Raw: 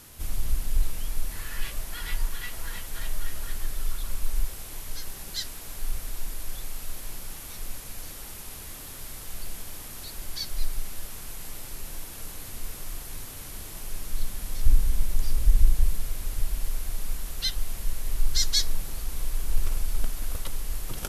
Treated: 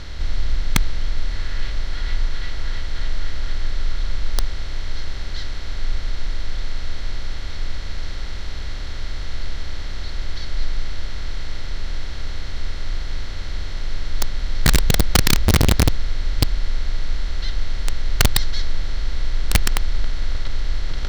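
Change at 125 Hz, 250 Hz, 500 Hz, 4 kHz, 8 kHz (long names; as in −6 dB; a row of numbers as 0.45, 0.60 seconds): +10.5, +16.0, +14.0, +6.5, +4.0 decibels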